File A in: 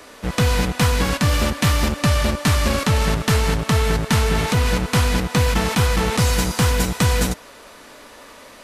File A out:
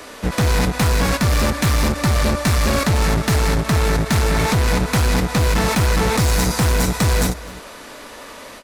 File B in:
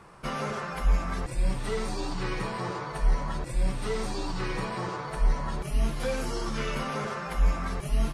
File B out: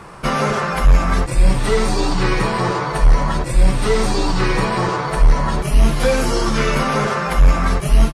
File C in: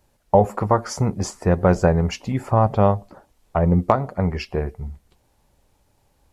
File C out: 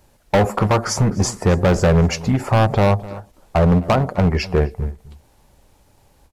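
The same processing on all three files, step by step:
dynamic bell 3 kHz, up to -8 dB, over -47 dBFS, Q 5.2; in parallel at +2 dB: peak limiter -11.5 dBFS; on the sum: hard clipper -12 dBFS; echo from a far wall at 44 m, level -18 dB; endings held to a fixed fall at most 260 dB/s; normalise loudness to -18 LUFS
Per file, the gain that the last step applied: -1.5 dB, +6.5 dB, +1.0 dB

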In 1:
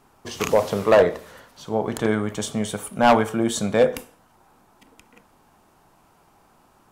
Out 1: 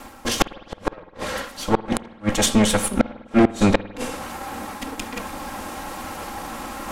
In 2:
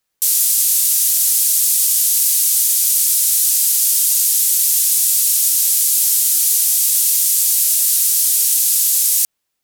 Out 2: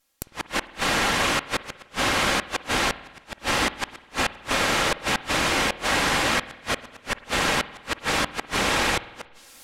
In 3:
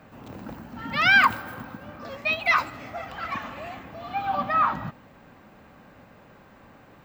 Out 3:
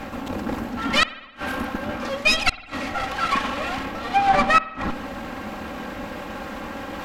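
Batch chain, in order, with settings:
comb filter that takes the minimum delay 3.7 ms; reverse; upward compressor, threshold -32 dBFS; reverse; low-pass that closes with the level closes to 2.6 kHz, closed at -13 dBFS; in parallel at -11.5 dB: saturation -18.5 dBFS; on the sum: inverted gate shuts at -14 dBFS, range -40 dB; spring tank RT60 1.1 s, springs 51 ms, chirp 25 ms, DRR 16 dB; normalise loudness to -24 LUFS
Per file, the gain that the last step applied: +11.0 dB, +4.0 dB, +8.0 dB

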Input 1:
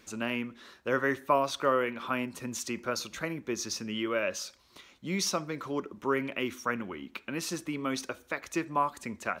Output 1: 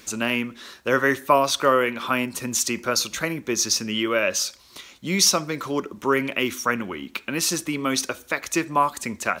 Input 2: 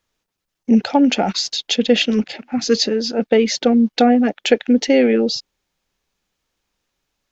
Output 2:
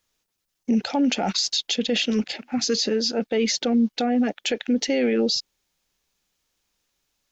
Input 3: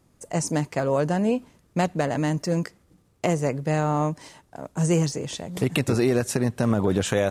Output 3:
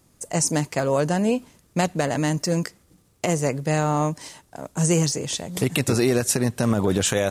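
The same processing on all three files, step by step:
treble shelf 3.5 kHz +9 dB; peak limiter -10 dBFS; normalise loudness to -23 LUFS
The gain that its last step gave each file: +7.5 dB, -4.0 dB, +1.0 dB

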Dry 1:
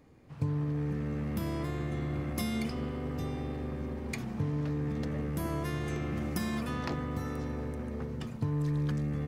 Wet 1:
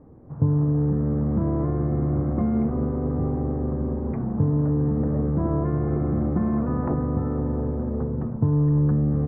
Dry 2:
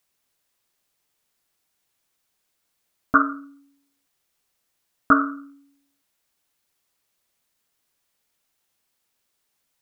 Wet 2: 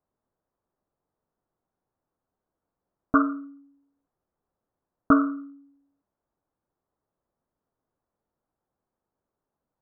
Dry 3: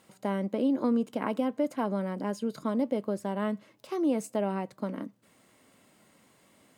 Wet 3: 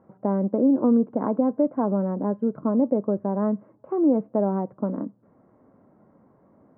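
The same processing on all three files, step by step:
Bessel low-pass 800 Hz, order 6; normalise loudness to -24 LUFS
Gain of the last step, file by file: +11.0 dB, +2.5 dB, +8.0 dB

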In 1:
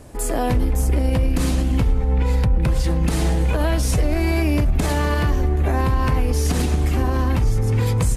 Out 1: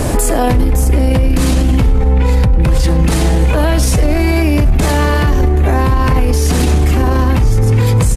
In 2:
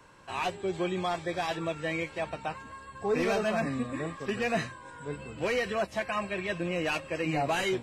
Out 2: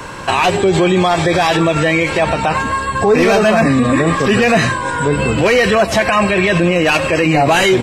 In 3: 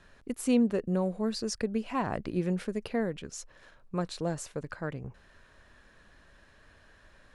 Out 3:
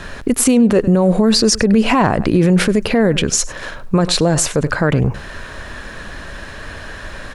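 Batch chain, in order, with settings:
compression, threshold -27 dBFS; delay 100 ms -22.5 dB; loudness maximiser +31 dB; trim -3.5 dB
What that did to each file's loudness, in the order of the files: +7.5 LU, +18.5 LU, +17.5 LU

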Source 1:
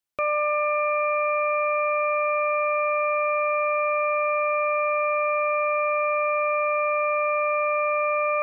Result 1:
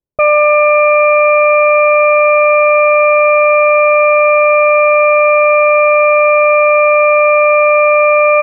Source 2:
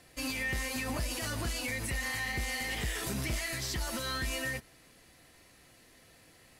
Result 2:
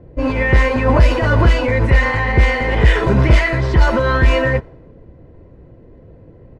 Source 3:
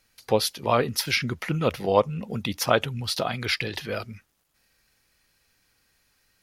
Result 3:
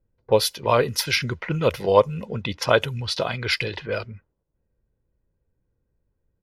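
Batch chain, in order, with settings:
comb 2 ms, depth 40%; level-controlled noise filter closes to 350 Hz, open at -21.5 dBFS; peak normalisation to -2 dBFS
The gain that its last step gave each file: +14.5 dB, +23.0 dB, +2.0 dB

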